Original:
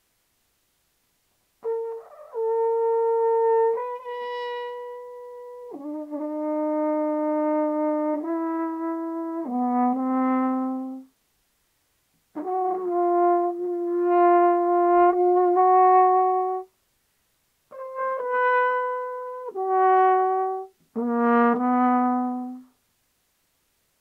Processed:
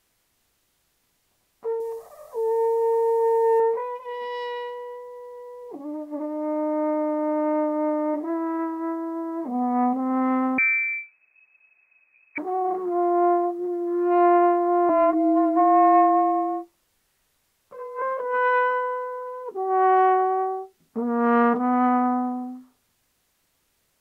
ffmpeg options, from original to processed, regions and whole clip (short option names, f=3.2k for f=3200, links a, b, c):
-filter_complex "[0:a]asettb=1/sr,asplit=3[a][b][c];[a]atrim=end=1.804[d];[b]atrim=start=1.8:end=3.6,asetpts=PTS-STARTPTS,afade=t=in:d=0.004:c=qsin,afade=t=out:st=1.796:d=0.004:c=qsin,asuperstop=centerf=1400:order=4:qfactor=5.7,bass=f=250:g=9,treble=f=4k:g=13[e];[c]atrim=start=3.596[f];[d][e]acrossfade=d=0.004:c1=hsin:c2=qsin[g];[g][f]acrossfade=d=0.004:c1=qsin:c2=hsin,asettb=1/sr,asplit=3[h][i][j];[h]atrim=end=10.584[k];[i]atrim=start=10.58:end=12.38,asetpts=PTS-STARTPTS,afade=t=in:d=0.004:c=qsin,afade=t=out:st=1.796:d=0.004:c=qsin,aemphasis=mode=reproduction:type=riaa,lowpass=f=2.2k:t=q:w=0.5098,lowpass=f=2.2k:t=q:w=0.6013,lowpass=f=2.2k:t=q:w=0.9,lowpass=f=2.2k:t=q:w=2.563,afreqshift=-2600[l];[j]atrim=start=12.376[m];[k][l]acrossfade=d=0.004:c1=hsin:c2=qsin[n];[n][m]acrossfade=d=0.004:c1=qsin:c2=hsin,asettb=1/sr,asplit=3[o][p][q];[o]atrim=end=14.894[r];[p]atrim=start=14.89:end=18.02,asetpts=PTS-STARTPTS,afade=t=in:d=0.004:c=qsin,afade=t=out:st=3.126:d=0.004:c=qsin,bandreject=f=50:t=h:w=6,bandreject=f=100:t=h:w=6,bandreject=f=150:t=h:w=6,bandreject=f=200:t=h:w=6,bandreject=f=250:t=h:w=6,bandreject=f=300:t=h:w=6,bandreject=f=350:t=h:w=6,bandreject=f=400:t=h:w=6,afreqshift=-34[s];[q]atrim=start=18.016[t];[r][s]acrossfade=d=0.004:c1=hsin:c2=qsin[u];[u][t]acrossfade=d=0.004:c1=qsin:c2=hsin"